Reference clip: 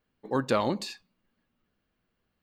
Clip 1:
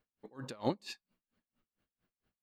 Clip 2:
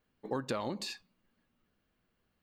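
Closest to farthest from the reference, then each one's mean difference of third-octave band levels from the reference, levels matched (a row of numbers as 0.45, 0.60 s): 2, 1; 3.0, 7.5 dB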